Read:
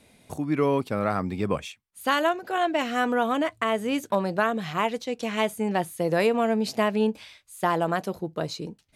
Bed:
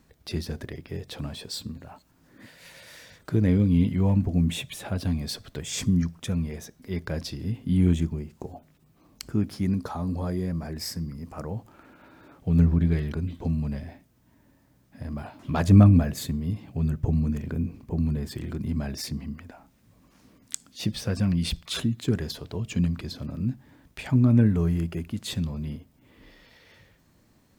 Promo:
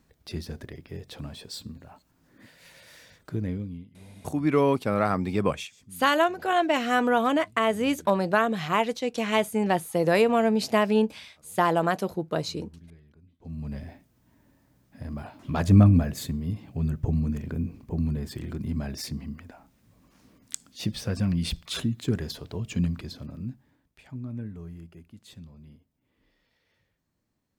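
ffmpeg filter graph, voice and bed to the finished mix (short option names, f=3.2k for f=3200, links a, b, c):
-filter_complex "[0:a]adelay=3950,volume=1.5dB[a];[1:a]volume=22dB,afade=t=out:st=3.13:d=0.72:silence=0.0668344,afade=t=in:st=13.39:d=0.44:silence=0.0501187,afade=t=out:st=22.87:d=1.01:silence=0.16788[b];[a][b]amix=inputs=2:normalize=0"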